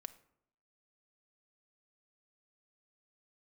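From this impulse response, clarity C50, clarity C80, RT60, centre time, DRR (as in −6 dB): 16.0 dB, 19.0 dB, 0.70 s, 4 ms, 9.5 dB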